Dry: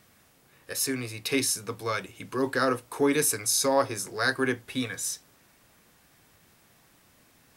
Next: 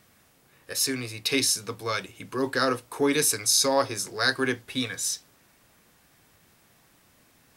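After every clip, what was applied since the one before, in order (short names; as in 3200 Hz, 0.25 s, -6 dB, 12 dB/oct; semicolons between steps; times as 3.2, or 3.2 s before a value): dynamic EQ 4400 Hz, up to +7 dB, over -44 dBFS, Q 0.99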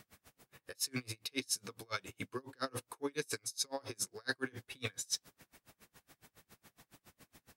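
reverse; compressor 12:1, threshold -33 dBFS, peak gain reduction 16 dB; reverse; dB-linear tremolo 7.2 Hz, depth 34 dB; gain +3 dB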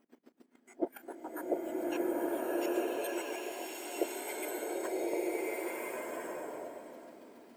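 spectrum mirrored in octaves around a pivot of 1900 Hz; level quantiser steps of 14 dB; bloom reverb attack 1.37 s, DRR -7.5 dB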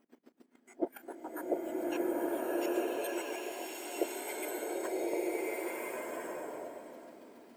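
nothing audible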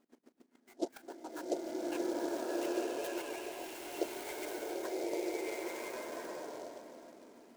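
noise-modulated delay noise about 5100 Hz, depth 0.037 ms; gain -2.5 dB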